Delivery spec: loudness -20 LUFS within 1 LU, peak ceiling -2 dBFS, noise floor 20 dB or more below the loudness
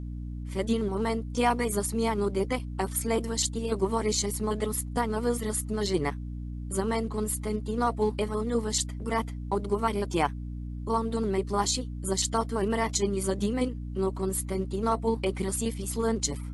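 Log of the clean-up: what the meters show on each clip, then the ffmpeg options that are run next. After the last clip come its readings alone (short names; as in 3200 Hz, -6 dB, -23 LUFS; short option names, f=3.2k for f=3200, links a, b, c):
hum 60 Hz; harmonics up to 300 Hz; hum level -33 dBFS; loudness -29.0 LUFS; peak -12.5 dBFS; loudness target -20.0 LUFS
-> -af "bandreject=f=60:t=h:w=6,bandreject=f=120:t=h:w=6,bandreject=f=180:t=h:w=6,bandreject=f=240:t=h:w=6,bandreject=f=300:t=h:w=6"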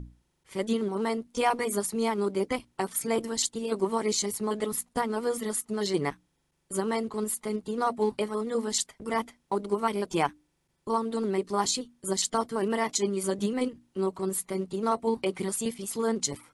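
hum none; loudness -29.5 LUFS; peak -13.0 dBFS; loudness target -20.0 LUFS
-> -af "volume=9.5dB"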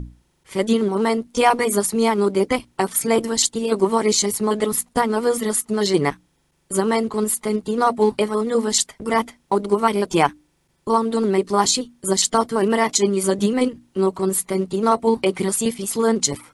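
loudness -20.0 LUFS; peak -3.5 dBFS; noise floor -65 dBFS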